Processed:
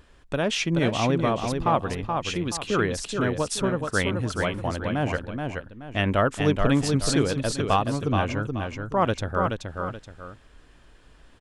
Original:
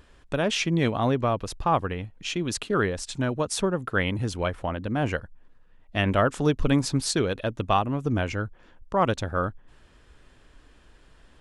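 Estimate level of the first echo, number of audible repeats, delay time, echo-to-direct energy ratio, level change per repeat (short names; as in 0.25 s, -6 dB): -5.0 dB, 2, 0.427 s, -4.5 dB, -9.5 dB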